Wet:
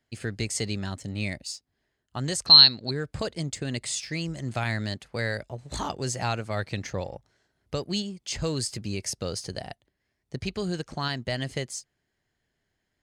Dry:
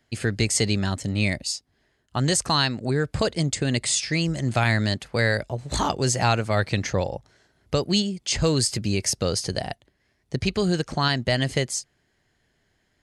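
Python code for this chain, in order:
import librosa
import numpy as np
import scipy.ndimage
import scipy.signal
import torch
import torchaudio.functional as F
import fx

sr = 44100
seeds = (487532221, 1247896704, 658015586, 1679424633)

p1 = np.sign(x) * np.maximum(np.abs(x) - 10.0 ** (-36.5 / 20.0), 0.0)
p2 = x + F.gain(torch.from_numpy(p1), -10.5).numpy()
p3 = fx.lowpass_res(p2, sr, hz=4200.0, q=14.0, at=(2.46, 2.91))
y = F.gain(torch.from_numpy(p3), -9.5).numpy()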